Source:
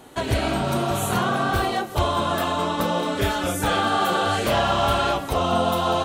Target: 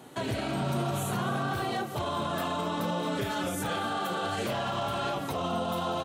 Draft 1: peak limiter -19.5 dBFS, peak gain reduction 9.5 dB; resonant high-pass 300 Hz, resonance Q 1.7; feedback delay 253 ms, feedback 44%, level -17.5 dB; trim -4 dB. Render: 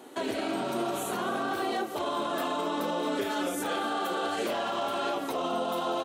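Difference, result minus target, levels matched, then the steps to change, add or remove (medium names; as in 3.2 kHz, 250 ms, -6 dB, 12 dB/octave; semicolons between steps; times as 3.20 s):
125 Hz band -14.5 dB
change: resonant high-pass 130 Hz, resonance Q 1.7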